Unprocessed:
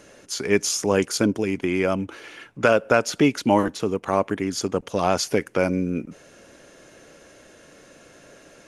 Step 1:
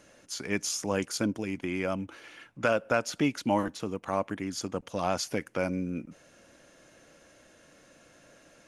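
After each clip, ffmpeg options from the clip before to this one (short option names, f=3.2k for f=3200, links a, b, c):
-af "equalizer=f=410:w=5.2:g=-8,volume=-7.5dB"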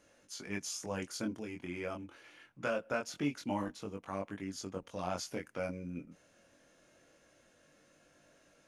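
-af "flanger=delay=20:depth=3.6:speed=0.25,volume=-5.5dB"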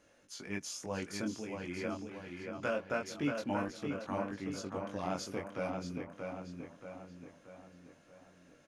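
-filter_complex "[0:a]highshelf=f=6.7k:g=-5,asplit=2[a][b];[b]adelay=630,lowpass=f=4.2k:p=1,volume=-4.5dB,asplit=2[c][d];[d]adelay=630,lowpass=f=4.2k:p=1,volume=0.51,asplit=2[e][f];[f]adelay=630,lowpass=f=4.2k:p=1,volume=0.51,asplit=2[g][h];[h]adelay=630,lowpass=f=4.2k:p=1,volume=0.51,asplit=2[i][j];[j]adelay=630,lowpass=f=4.2k:p=1,volume=0.51,asplit=2[k][l];[l]adelay=630,lowpass=f=4.2k:p=1,volume=0.51,asplit=2[m][n];[n]adelay=630,lowpass=f=4.2k:p=1,volume=0.51[o];[a][c][e][g][i][k][m][o]amix=inputs=8:normalize=0"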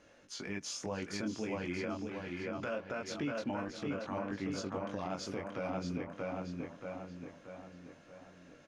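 -af "lowpass=6.1k,alimiter=level_in=8dB:limit=-24dB:level=0:latency=1:release=135,volume=-8dB,volume=4.5dB"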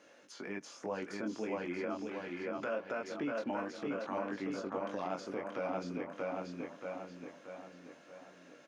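-filter_complex "[0:a]acrossover=split=2000[a][b];[b]acompressor=threshold=-56dB:ratio=6[c];[a][c]amix=inputs=2:normalize=0,highpass=260,volume=2dB"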